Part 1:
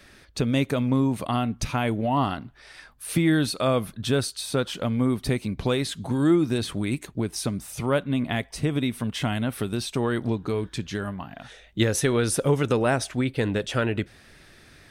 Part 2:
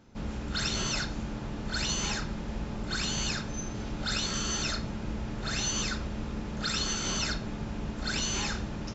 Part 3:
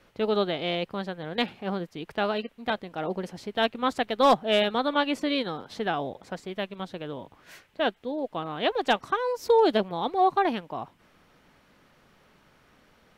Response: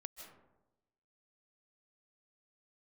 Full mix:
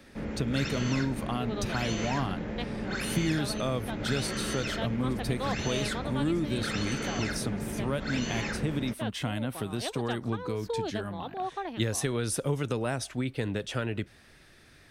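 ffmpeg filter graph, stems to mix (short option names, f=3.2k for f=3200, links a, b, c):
-filter_complex "[0:a]volume=-5dB[a];[1:a]equalizer=f=125:t=o:w=1:g=5,equalizer=f=250:t=o:w=1:g=7,equalizer=f=500:t=o:w=1:g=11,equalizer=f=2k:t=o:w=1:g=12,equalizer=f=4k:t=o:w=1:g=-3,equalizer=f=8k:t=o:w=1:g=-4,volume=-6.5dB[b];[2:a]adelay=1200,volume=-10.5dB[c];[a][b][c]amix=inputs=3:normalize=0,acrossover=split=170|3000[d][e][f];[e]acompressor=threshold=-31dB:ratio=2[g];[d][g][f]amix=inputs=3:normalize=0"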